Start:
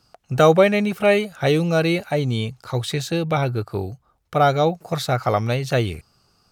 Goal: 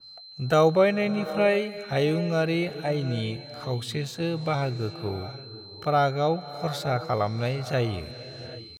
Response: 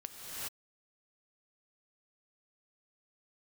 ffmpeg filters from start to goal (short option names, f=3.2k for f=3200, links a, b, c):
-filter_complex "[0:a]atempo=0.74,aeval=exprs='val(0)+0.0141*sin(2*PI*4100*n/s)':c=same,asplit=2[a][b];[1:a]atrim=start_sample=2205,asetrate=23814,aresample=44100,lowpass=8.3k[c];[b][c]afir=irnorm=-1:irlink=0,volume=-17dB[d];[a][d]amix=inputs=2:normalize=0,adynamicequalizer=threshold=0.0224:dfrequency=3300:dqfactor=0.7:tfrequency=3300:tqfactor=0.7:attack=5:release=100:ratio=0.375:range=3:mode=cutabove:tftype=highshelf,volume=-7dB"